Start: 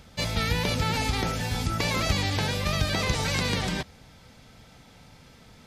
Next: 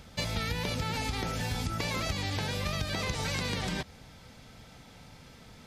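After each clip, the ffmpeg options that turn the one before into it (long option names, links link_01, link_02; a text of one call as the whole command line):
ffmpeg -i in.wav -af "acompressor=threshold=-29dB:ratio=6" out.wav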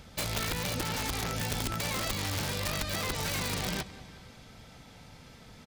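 ffmpeg -i in.wav -af "aecho=1:1:184|368|552|736|920:0.133|0.0747|0.0418|0.0234|0.0131,aeval=exprs='(mod(17.8*val(0)+1,2)-1)/17.8':channel_layout=same" out.wav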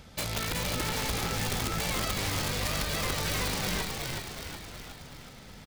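ffmpeg -i in.wav -filter_complex "[0:a]asplit=9[link_01][link_02][link_03][link_04][link_05][link_06][link_07][link_08][link_09];[link_02]adelay=370,afreqshift=-49,volume=-3.5dB[link_10];[link_03]adelay=740,afreqshift=-98,volume=-8.5dB[link_11];[link_04]adelay=1110,afreqshift=-147,volume=-13.6dB[link_12];[link_05]adelay=1480,afreqshift=-196,volume=-18.6dB[link_13];[link_06]adelay=1850,afreqshift=-245,volume=-23.6dB[link_14];[link_07]adelay=2220,afreqshift=-294,volume=-28.7dB[link_15];[link_08]adelay=2590,afreqshift=-343,volume=-33.7dB[link_16];[link_09]adelay=2960,afreqshift=-392,volume=-38.8dB[link_17];[link_01][link_10][link_11][link_12][link_13][link_14][link_15][link_16][link_17]amix=inputs=9:normalize=0" out.wav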